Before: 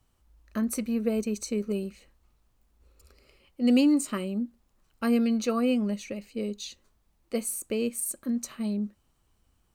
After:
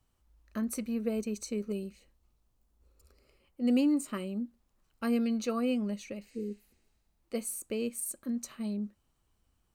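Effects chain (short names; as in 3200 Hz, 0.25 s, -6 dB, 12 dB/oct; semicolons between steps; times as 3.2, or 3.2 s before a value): 1.72–4.13 bell 1100 Hz -> 5500 Hz -5 dB 1.7 oct; 6.32–7.14 spectral repair 500–10000 Hz both; gain -5 dB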